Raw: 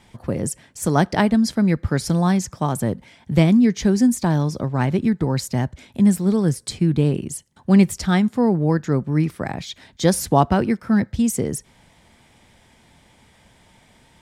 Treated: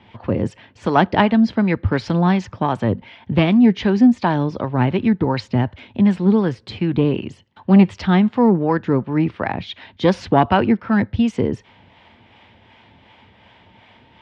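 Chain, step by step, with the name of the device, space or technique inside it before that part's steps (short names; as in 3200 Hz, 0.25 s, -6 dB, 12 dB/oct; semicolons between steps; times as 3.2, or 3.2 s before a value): guitar amplifier with harmonic tremolo (harmonic tremolo 2.7 Hz, depth 50%, crossover 540 Hz; soft clip -9 dBFS, distortion -19 dB; speaker cabinet 85–3700 Hz, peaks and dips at 100 Hz +5 dB, 150 Hz -8 dB, 930 Hz +4 dB, 2800 Hz +5 dB); gain +6.5 dB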